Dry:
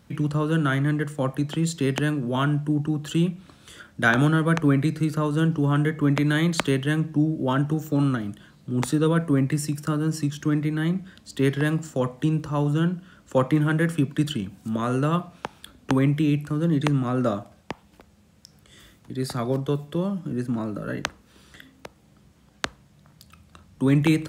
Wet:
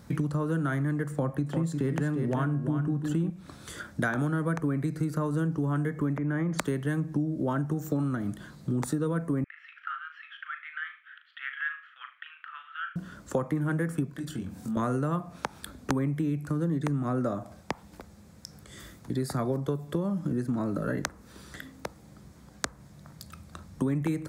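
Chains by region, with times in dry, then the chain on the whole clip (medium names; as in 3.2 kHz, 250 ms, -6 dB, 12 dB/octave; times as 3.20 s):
1.11–3.30 s: tone controls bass +3 dB, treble -6 dB + de-hum 272.5 Hz, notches 39 + delay 353 ms -7.5 dB
6.17–6.59 s: compression 2.5:1, threshold -23 dBFS + boxcar filter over 11 samples
9.44–12.96 s: Chebyshev band-pass 1.3–3.2 kHz, order 4 + dynamic bell 2 kHz, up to -3 dB, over -47 dBFS, Q 0.79 + flutter echo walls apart 6.6 m, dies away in 0.29 s
14.10–14.77 s: compression 2.5:1, threshold -42 dBFS + doubling 23 ms -4 dB
whole clip: dynamic bell 3.8 kHz, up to -6 dB, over -46 dBFS, Q 1.1; compression 6:1, threshold -31 dBFS; peaking EQ 2.9 kHz -9 dB 0.52 oct; trim +5 dB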